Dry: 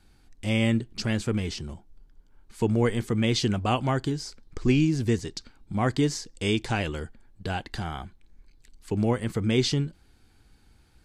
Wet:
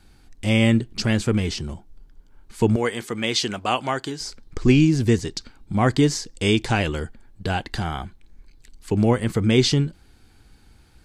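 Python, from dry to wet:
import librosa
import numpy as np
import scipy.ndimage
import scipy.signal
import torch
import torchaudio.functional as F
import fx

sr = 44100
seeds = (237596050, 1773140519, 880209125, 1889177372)

y = fx.highpass(x, sr, hz=660.0, slope=6, at=(2.76, 4.21))
y = F.gain(torch.from_numpy(y), 6.0).numpy()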